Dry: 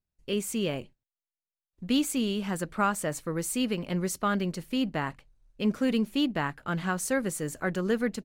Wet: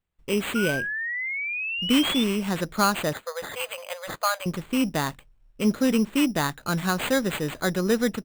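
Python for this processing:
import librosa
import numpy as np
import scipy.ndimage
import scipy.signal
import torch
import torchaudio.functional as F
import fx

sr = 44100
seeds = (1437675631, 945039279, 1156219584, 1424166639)

y = fx.brickwall_bandpass(x, sr, low_hz=480.0, high_hz=7600.0, at=(3.13, 4.46))
y = fx.sample_hold(y, sr, seeds[0], rate_hz=5500.0, jitter_pct=0)
y = fx.spec_paint(y, sr, seeds[1], shape='rise', start_s=0.55, length_s=1.69, low_hz=1400.0, high_hz=3600.0, level_db=-34.0)
y = F.gain(torch.from_numpy(y), 4.5).numpy()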